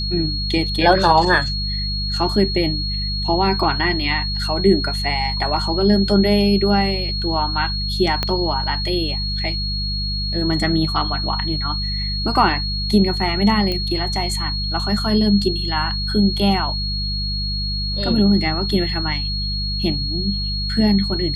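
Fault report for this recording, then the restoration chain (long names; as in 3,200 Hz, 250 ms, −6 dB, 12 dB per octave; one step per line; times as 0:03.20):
mains hum 50 Hz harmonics 4 −25 dBFS
whistle 4,300 Hz −24 dBFS
0:08.23: click −6 dBFS
0:13.72: click −11 dBFS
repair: click removal
hum removal 50 Hz, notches 4
notch filter 4,300 Hz, Q 30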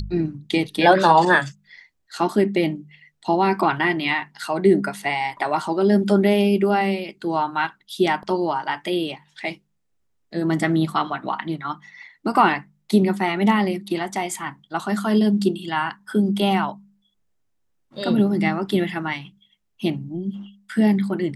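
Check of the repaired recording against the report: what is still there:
0:08.23: click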